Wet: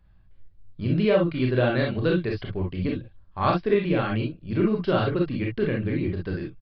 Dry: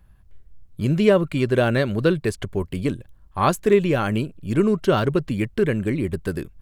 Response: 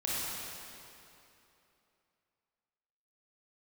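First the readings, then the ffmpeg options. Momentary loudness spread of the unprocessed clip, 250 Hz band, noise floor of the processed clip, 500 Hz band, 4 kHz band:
10 LU, −3.0 dB, −55 dBFS, −4.0 dB, −3.0 dB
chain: -filter_complex "[1:a]atrim=start_sample=2205,atrim=end_sample=3087[link_01];[0:a][link_01]afir=irnorm=-1:irlink=0,aresample=11025,aresample=44100,volume=-5dB"

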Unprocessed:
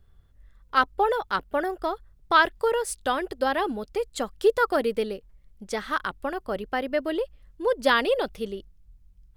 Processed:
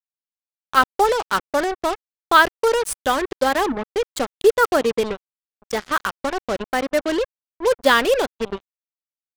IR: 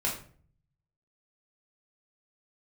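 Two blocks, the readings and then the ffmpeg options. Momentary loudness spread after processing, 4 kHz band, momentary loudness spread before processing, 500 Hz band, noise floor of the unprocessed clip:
11 LU, +6.5 dB, 11 LU, +5.5 dB, −58 dBFS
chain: -af "afftfilt=real='re*gte(hypot(re,im),0.0112)':imag='im*gte(hypot(re,im),0.0112)':win_size=1024:overlap=0.75,acrusher=bits=4:mix=0:aa=0.5,volume=5.5dB"

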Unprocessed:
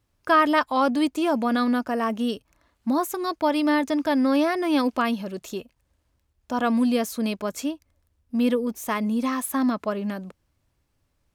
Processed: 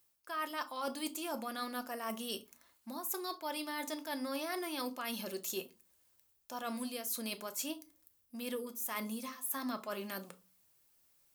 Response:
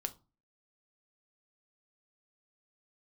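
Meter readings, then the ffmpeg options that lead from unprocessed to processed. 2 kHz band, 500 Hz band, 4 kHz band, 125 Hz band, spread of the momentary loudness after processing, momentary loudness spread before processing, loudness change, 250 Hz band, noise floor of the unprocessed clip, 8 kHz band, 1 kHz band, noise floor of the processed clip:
−14.0 dB, −16.0 dB, −8.0 dB, can't be measured, 7 LU, 11 LU, −15.5 dB, −19.5 dB, −72 dBFS, −4.0 dB, −16.0 dB, −73 dBFS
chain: -filter_complex "[0:a]aemphasis=mode=production:type=riaa,areverse,acompressor=threshold=-31dB:ratio=12,areverse[link_01];[1:a]atrim=start_sample=2205[link_02];[link_01][link_02]afir=irnorm=-1:irlink=0,volume=-4dB"

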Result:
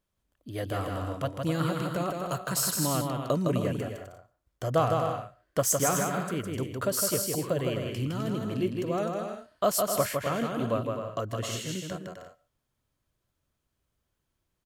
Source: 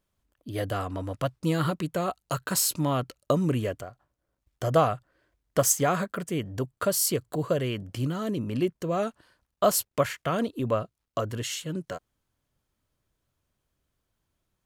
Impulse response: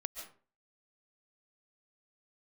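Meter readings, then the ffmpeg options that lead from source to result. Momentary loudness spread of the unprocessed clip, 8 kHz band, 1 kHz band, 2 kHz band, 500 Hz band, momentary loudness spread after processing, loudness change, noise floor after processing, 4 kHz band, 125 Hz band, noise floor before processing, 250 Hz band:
10 LU, −1.0 dB, −1.0 dB, −1.0 dB, −1.5 dB, 10 LU, −1.5 dB, −81 dBFS, −1.0 dB, −1.0 dB, −81 dBFS, −1.5 dB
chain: -filter_complex "[0:a]aecho=1:1:160|256|313.6|348.2|368.9:0.631|0.398|0.251|0.158|0.1,asplit=2[link_01][link_02];[1:a]atrim=start_sample=2205,afade=type=out:start_time=0.2:duration=0.01,atrim=end_sample=9261[link_03];[link_02][link_03]afir=irnorm=-1:irlink=0,volume=-15dB[link_04];[link_01][link_04]amix=inputs=2:normalize=0,volume=-4.5dB"

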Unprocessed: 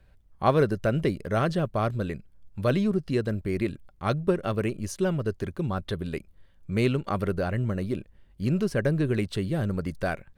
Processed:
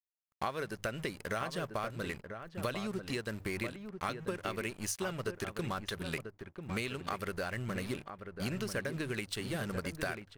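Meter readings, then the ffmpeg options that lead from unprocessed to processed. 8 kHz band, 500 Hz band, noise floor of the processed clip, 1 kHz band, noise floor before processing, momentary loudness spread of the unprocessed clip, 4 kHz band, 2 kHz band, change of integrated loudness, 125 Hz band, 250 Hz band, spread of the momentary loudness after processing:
+2.0 dB, −11.5 dB, −62 dBFS, −7.5 dB, −58 dBFS, 8 LU, −1.0 dB, −3.0 dB, −10.5 dB, −14.0 dB, −12.0 dB, 4 LU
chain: -filter_complex "[0:a]bandreject=frequency=50:width_type=h:width=6,bandreject=frequency=100:width_type=h:width=6,bandreject=frequency=150:width_type=h:width=6,aeval=exprs='sgn(val(0))*max(abs(val(0))-0.00447,0)':channel_layout=same,tiltshelf=frequency=930:gain=-8.5,acompressor=threshold=-37dB:ratio=10,equalizer=frequency=3600:width_type=o:width=0.77:gain=-2.5,asplit=2[link_01][link_02];[link_02]adelay=991.3,volume=-7dB,highshelf=frequency=4000:gain=-22.3[link_03];[link_01][link_03]amix=inputs=2:normalize=0,volume=4dB"

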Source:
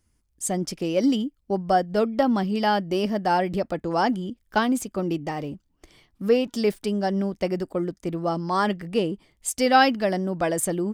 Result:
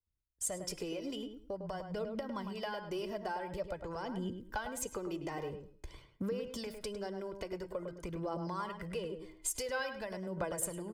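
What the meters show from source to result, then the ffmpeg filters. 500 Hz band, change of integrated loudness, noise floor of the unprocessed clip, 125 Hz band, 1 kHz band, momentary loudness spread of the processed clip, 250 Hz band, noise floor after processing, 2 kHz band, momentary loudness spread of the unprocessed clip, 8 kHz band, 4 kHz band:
−14.5 dB, −15.5 dB, −69 dBFS, −14.0 dB, −18.5 dB, 6 LU, −17.5 dB, −64 dBFS, −14.5 dB, 8 LU, −7.5 dB, −14.0 dB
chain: -filter_complex "[0:a]agate=range=-33dB:threshold=-50dB:ratio=3:detection=peak,highshelf=frequency=2900:gain=-8.5,aecho=1:1:2:0.54,acrossover=split=130[link_01][link_02];[link_02]acompressor=threshold=-29dB:ratio=2.5[link_03];[link_01][link_03]amix=inputs=2:normalize=0,bandreject=frequency=315:width_type=h:width=4,bandreject=frequency=630:width_type=h:width=4,bandreject=frequency=945:width_type=h:width=4,bandreject=frequency=1260:width_type=h:width=4,bandreject=frequency=1575:width_type=h:width=4,bandreject=frequency=1890:width_type=h:width=4,bandreject=frequency=2205:width_type=h:width=4,bandreject=frequency=2520:width_type=h:width=4,bandreject=frequency=2835:width_type=h:width=4,bandreject=frequency=3150:width_type=h:width=4,bandreject=frequency=3465:width_type=h:width=4,bandreject=frequency=3780:width_type=h:width=4,bandreject=frequency=4095:width_type=h:width=4,bandreject=frequency=4410:width_type=h:width=4,bandreject=frequency=4725:width_type=h:width=4,bandreject=frequency=5040:width_type=h:width=4,bandreject=frequency=5355:width_type=h:width=4,bandreject=frequency=5670:width_type=h:width=4,bandreject=frequency=5985:width_type=h:width=4,bandreject=frequency=6300:width_type=h:width=4,bandreject=frequency=6615:width_type=h:width=4,bandreject=frequency=6930:width_type=h:width=4,bandreject=frequency=7245:width_type=h:width=4,bandreject=frequency=7560:width_type=h:width=4,bandreject=frequency=7875:width_type=h:width=4,bandreject=frequency=8190:width_type=h:width=4,bandreject=frequency=8505:width_type=h:width=4,bandreject=frequency=8820:width_type=h:width=4,bandreject=frequency=9135:width_type=h:width=4,bandreject=frequency=9450:width_type=h:width=4,bandreject=frequency=9765:width_type=h:width=4,bandreject=frequency=10080:width_type=h:width=4,bandreject=frequency=10395:width_type=h:width=4,bandreject=frequency=10710:width_type=h:width=4,bandreject=frequency=11025:width_type=h:width=4,bandreject=frequency=11340:width_type=h:width=4,bandreject=frequency=11655:width_type=h:width=4,bandreject=frequency=11970:width_type=h:width=4,acrossover=split=670[link_04][link_05];[link_04]alimiter=level_in=8dB:limit=-24dB:level=0:latency=1:release=166,volume=-8dB[link_06];[link_06][link_05]amix=inputs=2:normalize=0,acompressor=threshold=-44dB:ratio=2.5,aphaser=in_gain=1:out_gain=1:delay=3.1:decay=0.43:speed=0.48:type=triangular,asplit=2[link_07][link_08];[link_08]adelay=104,lowpass=frequency=2000:poles=1,volume=-6.5dB,asplit=2[link_09][link_10];[link_10]adelay=104,lowpass=frequency=2000:poles=1,volume=0.22,asplit=2[link_11][link_12];[link_12]adelay=104,lowpass=frequency=2000:poles=1,volume=0.22[link_13];[link_07][link_09][link_11][link_13]amix=inputs=4:normalize=0,adynamicequalizer=threshold=0.00112:dfrequency=5600:dqfactor=0.7:tfrequency=5600:tqfactor=0.7:attack=5:release=100:ratio=0.375:range=3.5:mode=boostabove:tftype=highshelf,volume=2dB"

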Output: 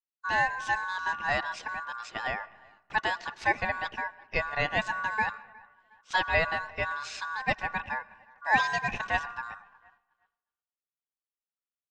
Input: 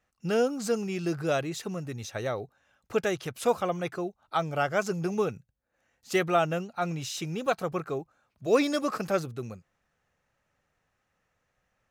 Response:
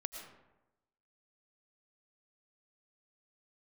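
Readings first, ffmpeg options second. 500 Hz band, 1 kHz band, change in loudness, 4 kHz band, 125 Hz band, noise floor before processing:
−9.5 dB, +3.0 dB, 0.0 dB, +1.0 dB, −8.0 dB, −78 dBFS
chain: -filter_complex "[0:a]lowpass=frequency=5100:width=0.5412,lowpass=frequency=5100:width=1.3066,asplit=2[link_01][link_02];[link_02]adelay=360,lowpass=frequency=950:poles=1,volume=-23.5dB,asplit=2[link_03][link_04];[link_04]adelay=360,lowpass=frequency=950:poles=1,volume=0.53,asplit=2[link_05][link_06];[link_06]adelay=360,lowpass=frequency=950:poles=1,volume=0.53[link_07];[link_01][link_03][link_05][link_07]amix=inputs=4:normalize=0,aeval=exprs='val(0)*sin(2*PI*1300*n/s)':channel_layout=same,agate=range=-33dB:threshold=-57dB:ratio=3:detection=peak,asplit=2[link_08][link_09];[1:a]atrim=start_sample=2205[link_10];[link_09][link_10]afir=irnorm=-1:irlink=0,volume=-12.5dB[link_11];[link_08][link_11]amix=inputs=2:normalize=0"

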